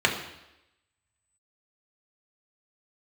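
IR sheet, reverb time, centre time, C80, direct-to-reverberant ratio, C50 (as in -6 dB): 0.90 s, 25 ms, 10.0 dB, 0.0 dB, 7.5 dB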